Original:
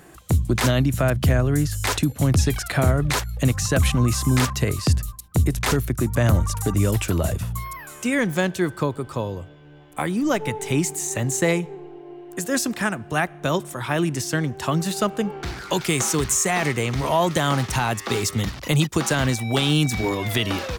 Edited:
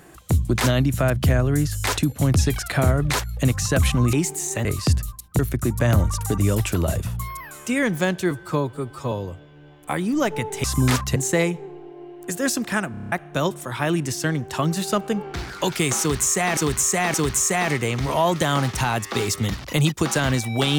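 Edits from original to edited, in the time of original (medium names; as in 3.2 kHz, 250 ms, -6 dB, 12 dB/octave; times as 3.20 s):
4.13–4.65 s: swap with 10.73–11.25 s
5.39–5.75 s: delete
8.67–9.21 s: stretch 1.5×
13.00 s: stutter in place 0.03 s, 7 plays
16.09–16.66 s: loop, 3 plays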